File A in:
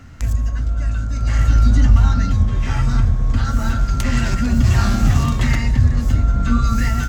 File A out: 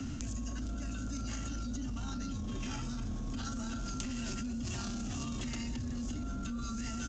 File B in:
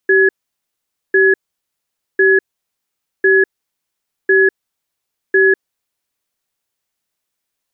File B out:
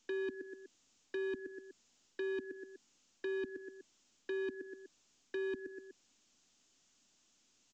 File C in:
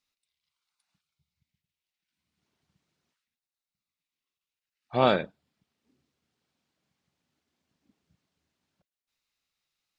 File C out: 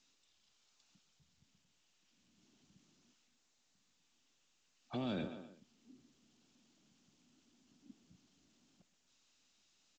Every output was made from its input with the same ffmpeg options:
ffmpeg -i in.wav -filter_complex "[0:a]equalizer=frequency=250:width_type=o:width=1:gain=11,equalizer=frequency=500:width_type=o:width=1:gain=-8,equalizer=frequency=1000:width_type=o:width=1:gain=-7,equalizer=frequency=2000:width_type=o:width=1:gain=-8,equalizer=frequency=4000:width_type=o:width=1:gain=-10,areverse,acompressor=threshold=-20dB:ratio=12,areverse,asplit=2[link_01][link_02];[link_02]adelay=123,lowpass=frequency=3900:poles=1,volume=-21dB,asplit=2[link_03][link_04];[link_04]adelay=123,lowpass=frequency=3900:poles=1,volume=0.38,asplit=2[link_05][link_06];[link_06]adelay=123,lowpass=frequency=3900:poles=1,volume=0.38[link_07];[link_01][link_03][link_05][link_07]amix=inputs=4:normalize=0,acrossover=split=130|310[link_08][link_09][link_10];[link_08]acompressor=threshold=-33dB:ratio=4[link_11];[link_09]acompressor=threshold=-40dB:ratio=4[link_12];[link_10]acompressor=threshold=-38dB:ratio=4[link_13];[link_11][link_12][link_13]amix=inputs=3:normalize=0,bass=frequency=250:gain=-8,treble=frequency=4000:gain=-13,asoftclip=type=tanh:threshold=-27dB,alimiter=level_in=15.5dB:limit=-24dB:level=0:latency=1:release=10,volume=-15.5dB,aexciter=amount=6.6:drive=3.6:freq=2800,volume=7dB" -ar 16000 -c:a pcm_mulaw out.wav

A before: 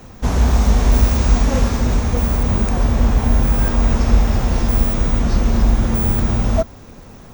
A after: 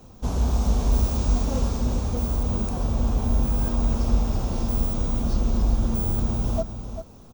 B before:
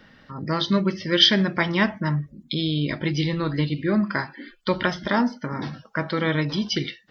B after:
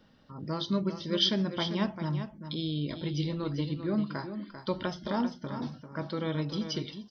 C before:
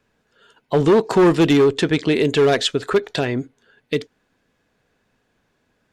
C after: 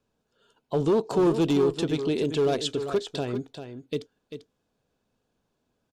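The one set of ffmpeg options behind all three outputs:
ffmpeg -i in.wav -af "equalizer=frequency=1900:width_type=o:width=0.79:gain=-12,aecho=1:1:394:0.335,volume=-8dB" out.wav

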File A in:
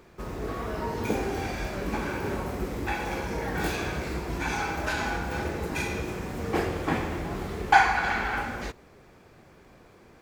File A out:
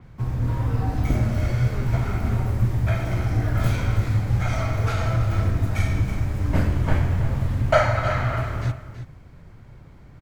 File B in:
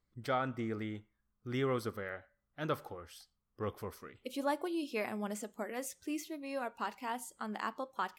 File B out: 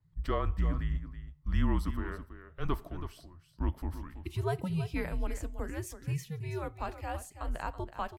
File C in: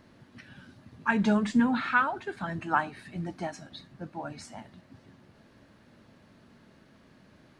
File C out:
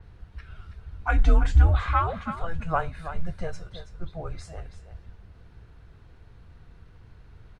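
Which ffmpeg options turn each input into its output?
ffmpeg -i in.wav -af "bass=frequency=250:gain=14,treble=frequency=4000:gain=-5,afreqshift=-170,aecho=1:1:327:0.266,adynamicequalizer=threshold=0.00251:dfrequency=5600:dqfactor=0.7:tfrequency=5600:tqfactor=0.7:attack=5:release=100:ratio=0.375:range=2:mode=boostabove:tftype=highshelf" out.wav

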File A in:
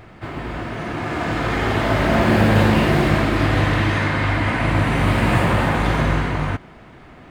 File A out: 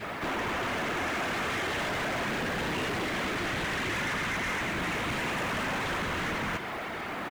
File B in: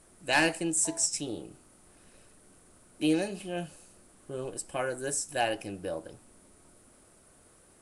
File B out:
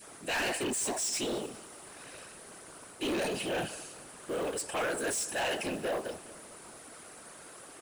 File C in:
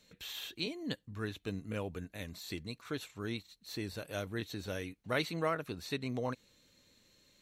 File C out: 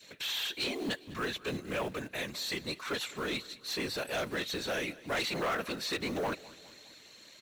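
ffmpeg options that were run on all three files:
ffmpeg -i in.wav -filter_complex "[0:a]adynamicequalizer=threshold=0.0178:dfrequency=810:dqfactor=1:tfrequency=810:tqfactor=1:attack=5:release=100:ratio=0.375:range=2.5:mode=cutabove:tftype=bell,areverse,acompressor=threshold=-28dB:ratio=5,areverse,afftfilt=real='hypot(re,im)*cos(2*PI*random(0))':imag='hypot(re,im)*sin(2*PI*random(1))':win_size=512:overlap=0.75,asplit=2[link_01][link_02];[link_02]highpass=frequency=720:poles=1,volume=24dB,asoftclip=type=tanh:threshold=-23.5dB[link_03];[link_01][link_03]amix=inputs=2:normalize=0,lowpass=frequency=5400:poles=1,volume=-6dB,acrossover=split=1700[link_04][link_05];[link_04]acrusher=bits=4:mode=log:mix=0:aa=0.000001[link_06];[link_06][link_05]amix=inputs=2:normalize=0,asoftclip=type=tanh:threshold=-29.5dB,aecho=1:1:204|408|612|816:0.0944|0.051|0.0275|0.0149,volume=2.5dB" out.wav

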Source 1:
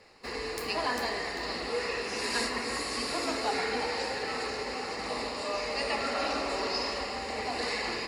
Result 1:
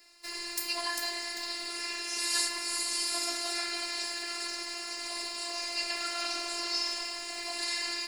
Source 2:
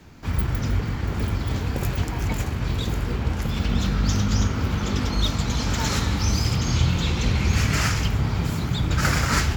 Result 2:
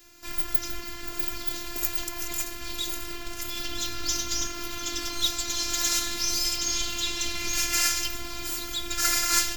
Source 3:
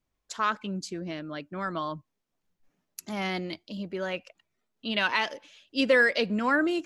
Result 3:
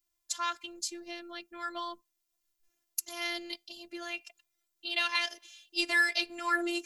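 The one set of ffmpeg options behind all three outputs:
ffmpeg -i in.wav -af "afftfilt=real='hypot(re,im)*cos(PI*b)':imag='0':win_size=512:overlap=0.75,crystalizer=i=7.5:c=0,volume=-7.5dB" out.wav

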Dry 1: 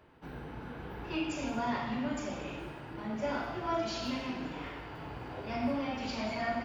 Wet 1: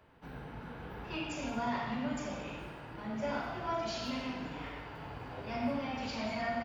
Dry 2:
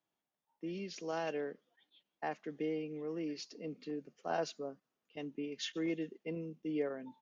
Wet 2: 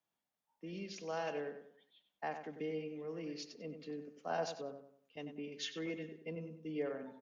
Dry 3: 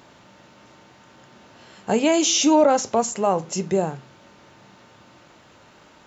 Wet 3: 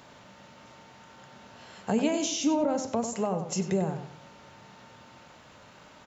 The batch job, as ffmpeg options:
ffmpeg -i in.wav -filter_complex "[0:a]acrossover=split=350[link_01][link_02];[link_02]acompressor=threshold=-28dB:ratio=10[link_03];[link_01][link_03]amix=inputs=2:normalize=0,equalizer=frequency=340:width_type=o:width=0.4:gain=-6,asplit=2[link_04][link_05];[link_05]adelay=95,lowpass=frequency=2900:poles=1,volume=-8dB,asplit=2[link_06][link_07];[link_07]adelay=95,lowpass=frequency=2900:poles=1,volume=0.37,asplit=2[link_08][link_09];[link_09]adelay=95,lowpass=frequency=2900:poles=1,volume=0.37,asplit=2[link_10][link_11];[link_11]adelay=95,lowpass=frequency=2900:poles=1,volume=0.37[link_12];[link_04][link_06][link_08][link_10][link_12]amix=inputs=5:normalize=0,volume=-1.5dB" out.wav

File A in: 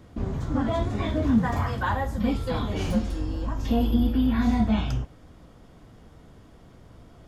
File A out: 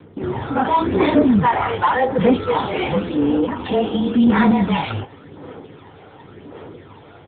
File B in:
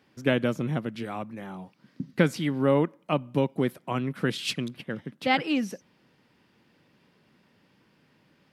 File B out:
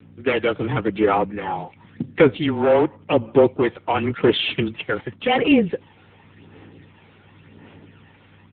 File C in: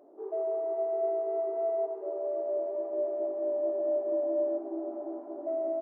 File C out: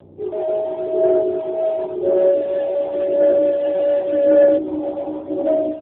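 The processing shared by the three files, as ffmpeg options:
ffmpeg -i in.wav -filter_complex "[0:a]highpass=230,aecho=1:1:2.2:0.58,dynaudnorm=framelen=150:gausssize=3:maxgain=13dB,aresample=11025,asoftclip=type=tanh:threshold=-9.5dB,aresample=44100,aeval=exprs='val(0)+0.00501*(sin(2*PI*60*n/s)+sin(2*PI*2*60*n/s)/2+sin(2*PI*3*60*n/s)/3+sin(2*PI*4*60*n/s)/4+sin(2*PI*5*60*n/s)/5)':channel_layout=same,afreqshift=-22,acrossover=split=430|970[link_01][link_02][link_03];[link_02]acrusher=bits=4:mode=log:mix=0:aa=0.000001[link_04];[link_01][link_04][link_03]amix=inputs=3:normalize=0,aphaser=in_gain=1:out_gain=1:delay=1.4:decay=0.5:speed=0.91:type=sinusoidal,acontrast=43,volume=-3.5dB" -ar 8000 -c:a libopencore_amrnb -b:a 6700 out.amr

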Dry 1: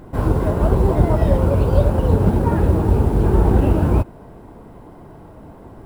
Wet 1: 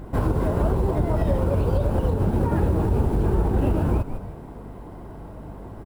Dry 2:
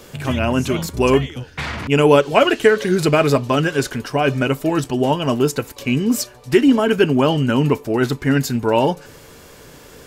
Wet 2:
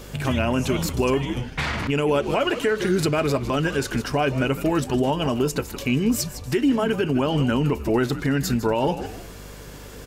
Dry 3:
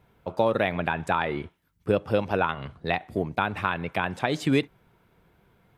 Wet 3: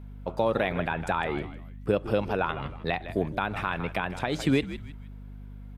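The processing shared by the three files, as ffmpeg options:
ffmpeg -i in.wav -filter_complex "[0:a]asplit=4[link_01][link_02][link_03][link_04];[link_02]adelay=156,afreqshift=-81,volume=-14.5dB[link_05];[link_03]adelay=312,afreqshift=-162,volume=-24.1dB[link_06];[link_04]adelay=468,afreqshift=-243,volume=-33.8dB[link_07];[link_01][link_05][link_06][link_07]amix=inputs=4:normalize=0,aeval=exprs='val(0)+0.00891*(sin(2*PI*50*n/s)+sin(2*PI*2*50*n/s)/2+sin(2*PI*3*50*n/s)/3+sin(2*PI*4*50*n/s)/4+sin(2*PI*5*50*n/s)/5)':channel_layout=same,alimiter=limit=-12.5dB:level=0:latency=1:release=166" out.wav

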